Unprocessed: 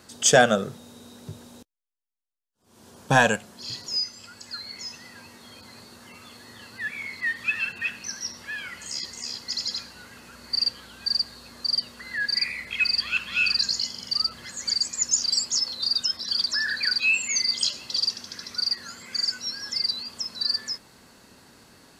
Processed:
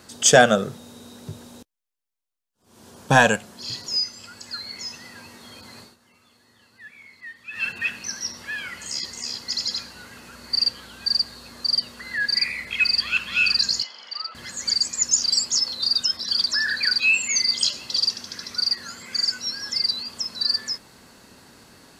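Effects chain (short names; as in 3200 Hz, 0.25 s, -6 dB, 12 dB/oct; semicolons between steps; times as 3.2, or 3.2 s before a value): 5.8–7.66 dip -15.5 dB, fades 0.16 s; 13.83–14.35 Butterworth band-pass 1400 Hz, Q 0.56; gain +3 dB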